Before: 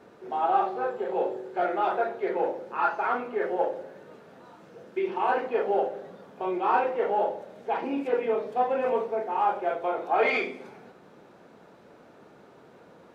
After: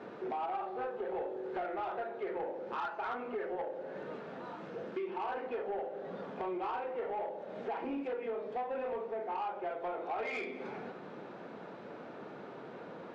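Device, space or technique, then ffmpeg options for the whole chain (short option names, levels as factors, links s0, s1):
AM radio: -af "highpass=130,lowpass=3600,acompressor=threshold=0.01:ratio=6,asoftclip=type=tanh:threshold=0.0158,volume=2"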